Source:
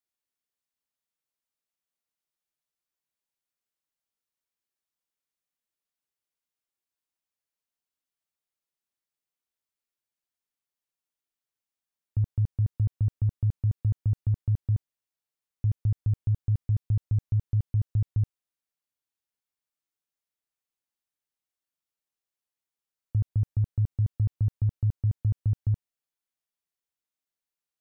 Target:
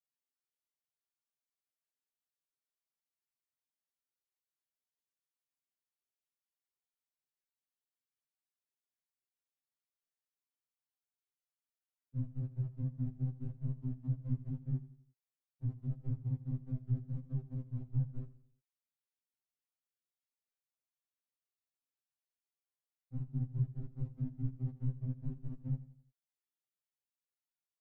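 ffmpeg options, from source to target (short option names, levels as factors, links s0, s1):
-af "afftfilt=real='hypot(re,im)*cos(2*PI*random(0))':imag='hypot(re,im)*sin(2*PI*random(1))':win_size=512:overlap=0.75,aecho=1:1:87|174|261|348:0.158|0.0697|0.0307|0.0135,afftfilt=real='re*2.45*eq(mod(b,6),0)':imag='im*2.45*eq(mod(b,6),0)':win_size=2048:overlap=0.75,volume=0.794"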